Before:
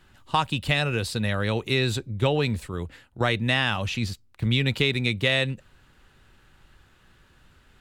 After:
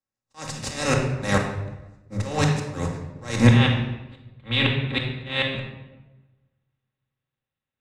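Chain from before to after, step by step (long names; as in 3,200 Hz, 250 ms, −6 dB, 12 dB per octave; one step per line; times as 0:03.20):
compressor on every frequency bin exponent 0.4
noise gate −23 dBFS, range −41 dB
high shelf with overshoot 4,400 Hz +10.5 dB, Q 3, from 0:03.47 −6 dB
downward compressor 6 to 1, threshold −19 dBFS, peak gain reduction 8 dB
volume swells 272 ms
gate with flip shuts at −14 dBFS, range −39 dB
high-frequency loss of the air 57 metres
rectangular room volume 1,900 cubic metres, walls mixed, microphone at 2.2 metres
multiband upward and downward expander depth 70%
level +4 dB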